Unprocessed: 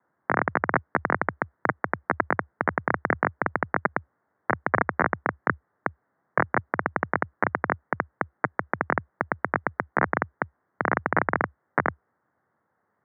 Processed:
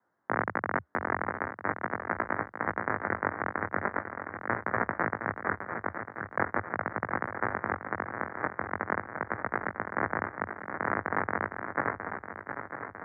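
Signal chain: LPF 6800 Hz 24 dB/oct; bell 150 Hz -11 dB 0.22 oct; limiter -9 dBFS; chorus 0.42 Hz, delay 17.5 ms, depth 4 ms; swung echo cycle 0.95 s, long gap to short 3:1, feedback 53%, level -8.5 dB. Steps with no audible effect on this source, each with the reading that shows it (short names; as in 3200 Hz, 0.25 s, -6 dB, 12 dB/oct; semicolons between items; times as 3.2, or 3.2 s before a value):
LPF 6800 Hz: input band ends at 2400 Hz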